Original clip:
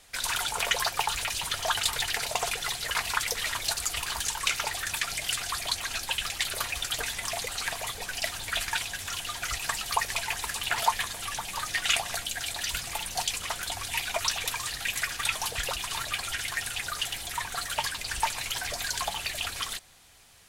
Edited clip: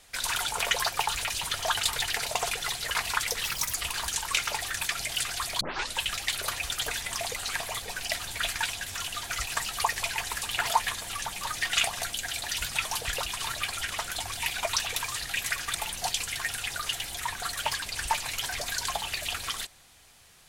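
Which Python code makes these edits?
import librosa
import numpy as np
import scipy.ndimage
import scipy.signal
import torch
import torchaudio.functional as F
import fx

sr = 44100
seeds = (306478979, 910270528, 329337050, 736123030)

y = fx.edit(x, sr, fx.speed_span(start_s=3.43, length_s=0.44, speed=1.39),
    fx.tape_start(start_s=5.73, length_s=0.35),
    fx.swap(start_s=12.88, length_s=0.53, other_s=15.26, other_length_s=1.14), tone=tone)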